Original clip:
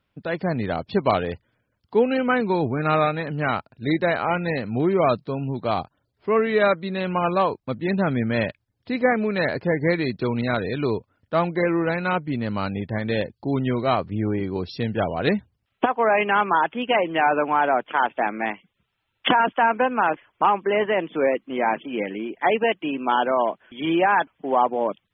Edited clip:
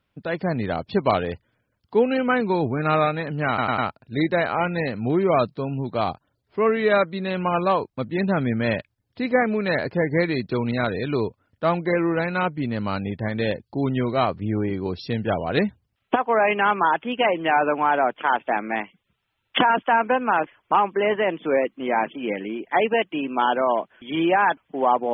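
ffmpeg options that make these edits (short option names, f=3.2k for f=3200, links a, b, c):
-filter_complex "[0:a]asplit=4[a][b][c][d];[a]atrim=end=3.582[e];[b]atrim=start=3.478:end=3.582[f];[c]atrim=start=3.478:end=3.582[g];[d]atrim=start=3.478[h];[e][f]acrossfade=d=0.004:c1=hsin:c2=hsin[i];[i][g]acrossfade=d=0.004:c1=hsin:c2=hsin[j];[j][h]acrossfade=d=0.004:c1=hsin:c2=hsin"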